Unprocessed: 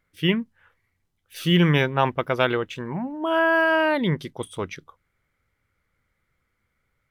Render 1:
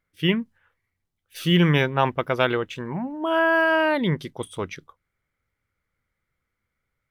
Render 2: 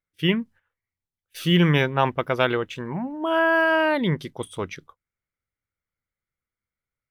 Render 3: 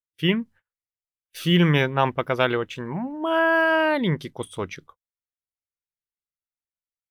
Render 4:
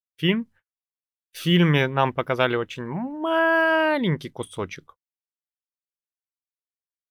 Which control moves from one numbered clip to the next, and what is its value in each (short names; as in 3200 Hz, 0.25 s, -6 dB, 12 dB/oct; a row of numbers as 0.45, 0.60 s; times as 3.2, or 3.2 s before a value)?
gate, range: -6, -18, -36, -50 dB